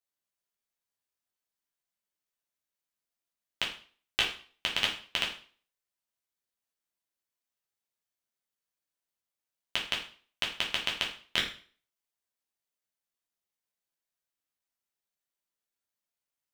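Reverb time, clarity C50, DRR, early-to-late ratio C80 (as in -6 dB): 0.45 s, 7.5 dB, -2.5 dB, 12.0 dB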